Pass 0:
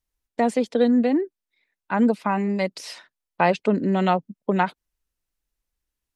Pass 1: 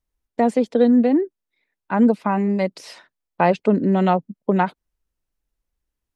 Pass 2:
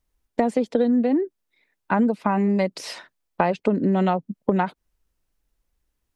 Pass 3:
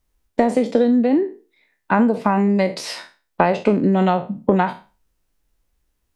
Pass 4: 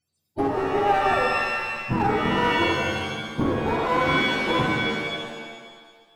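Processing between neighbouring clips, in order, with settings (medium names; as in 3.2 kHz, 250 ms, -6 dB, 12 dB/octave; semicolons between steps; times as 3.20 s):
tilt shelf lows +4 dB, about 1.4 kHz
compression, threshold -23 dBFS, peak gain reduction 12 dB; trim +5.5 dB
spectral sustain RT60 0.33 s; trim +3.5 dB
spectrum inverted on a logarithmic axis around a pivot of 440 Hz; one-sided clip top -20 dBFS; pitch-shifted reverb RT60 1.5 s, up +7 st, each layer -2 dB, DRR 0.5 dB; trim -5.5 dB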